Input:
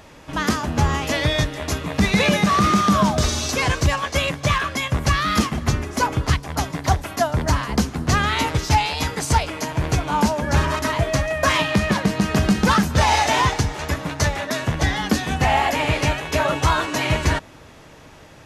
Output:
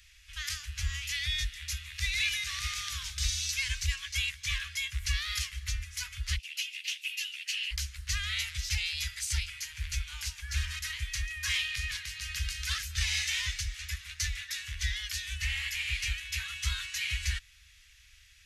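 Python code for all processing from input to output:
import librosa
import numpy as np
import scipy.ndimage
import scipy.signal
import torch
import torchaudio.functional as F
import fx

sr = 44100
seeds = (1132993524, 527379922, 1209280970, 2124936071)

y = fx.chain(x, sr, fx.highpass_res(hz=2700.0, q=8.3),
    fx.ensemble(), at=(6.38, 7.71))
y = scipy.signal.sosfilt(scipy.signal.cheby2(4, 80, [240.0, 570.0], 'bandstop', fs=sr, output='sos'), y)
y = fx.peak_eq(y, sr, hz=600.0, db=-10.5, octaves=0.37)
y = y * 10.0 ** (-6.5 / 20.0)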